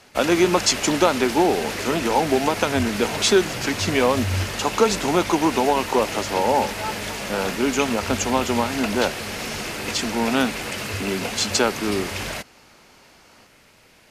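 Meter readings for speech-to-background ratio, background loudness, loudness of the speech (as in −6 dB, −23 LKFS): 6.0 dB, −28.0 LKFS, −22.0 LKFS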